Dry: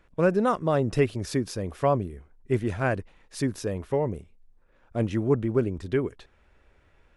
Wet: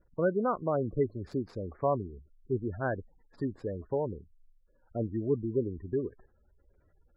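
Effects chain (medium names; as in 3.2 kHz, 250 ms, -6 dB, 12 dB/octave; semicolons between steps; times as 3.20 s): median filter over 15 samples; spectral gate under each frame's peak -20 dB strong; dynamic bell 150 Hz, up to -4 dB, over -35 dBFS, Q 0.99; trim -4.5 dB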